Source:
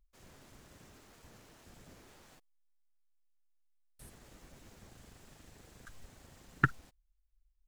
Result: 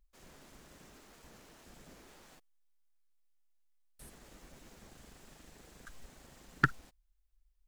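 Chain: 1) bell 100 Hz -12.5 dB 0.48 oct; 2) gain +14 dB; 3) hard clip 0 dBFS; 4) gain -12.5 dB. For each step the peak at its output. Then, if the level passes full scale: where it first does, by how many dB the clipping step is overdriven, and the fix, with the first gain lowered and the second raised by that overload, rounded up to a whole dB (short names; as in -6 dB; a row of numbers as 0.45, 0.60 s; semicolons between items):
-10.0, +4.0, 0.0, -12.5 dBFS; step 2, 4.0 dB; step 2 +10 dB, step 4 -8.5 dB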